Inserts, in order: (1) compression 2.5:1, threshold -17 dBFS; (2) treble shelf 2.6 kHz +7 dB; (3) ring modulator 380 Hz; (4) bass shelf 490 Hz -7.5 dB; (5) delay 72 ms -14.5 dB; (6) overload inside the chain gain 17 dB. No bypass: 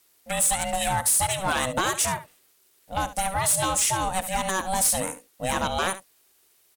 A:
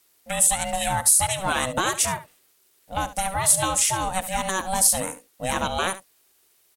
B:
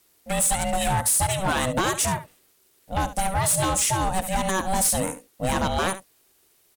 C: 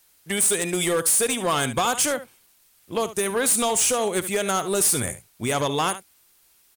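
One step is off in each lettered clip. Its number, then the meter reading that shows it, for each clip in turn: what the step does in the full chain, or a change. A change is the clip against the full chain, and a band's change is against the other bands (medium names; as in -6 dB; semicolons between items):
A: 6, distortion -10 dB; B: 4, 125 Hz band +6.0 dB; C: 3, crest factor change -2.0 dB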